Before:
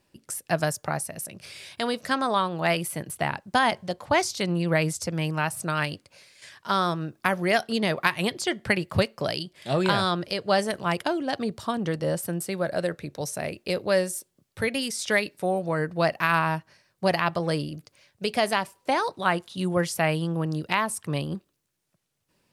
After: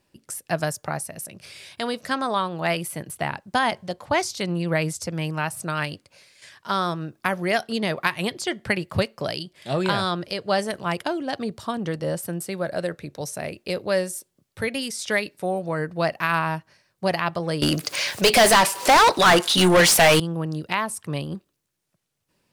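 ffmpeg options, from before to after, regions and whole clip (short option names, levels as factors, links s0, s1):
-filter_complex "[0:a]asettb=1/sr,asplit=3[s0][s1][s2];[s0]atrim=end=17.624[s3];[s1]atrim=start=17.62:end=20.2,asetpts=PTS-STARTPTS,afade=t=in:d=0.004:c=qsin,afade=t=out:st=2.576:d=0.004:c=qsin,highshelf=f=4500:g=5.5,acompressor=mode=upward:threshold=0.0141:ratio=2.5:attack=3.2:release=140:knee=2.83:detection=peak,asplit=2[s4][s5];[s5]highpass=f=720:p=1,volume=35.5,asoftclip=type=tanh:threshold=0.447[s6];[s4][s6]amix=inputs=2:normalize=0,lowpass=f=6800:p=1,volume=0.501[s7];[s2]atrim=start=20.196[s8];[s3][s7]acrossfade=d=0.004:c1=hsin:c2=qsin[s9];[s9][s8]acrossfade=d=0.004:c1=qsin:c2=hsin"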